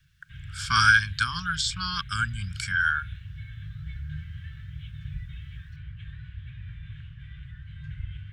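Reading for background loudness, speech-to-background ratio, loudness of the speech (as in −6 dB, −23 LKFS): −41.0 LKFS, 16.5 dB, −24.5 LKFS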